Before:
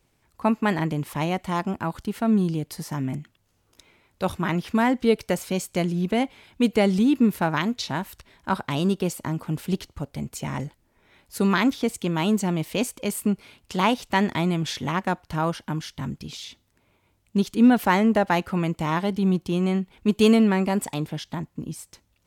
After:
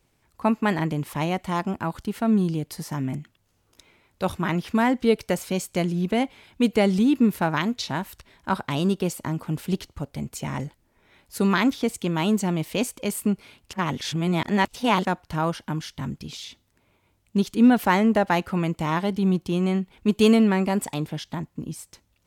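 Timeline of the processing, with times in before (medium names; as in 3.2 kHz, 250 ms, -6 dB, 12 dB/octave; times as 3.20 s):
13.73–15.05 s: reverse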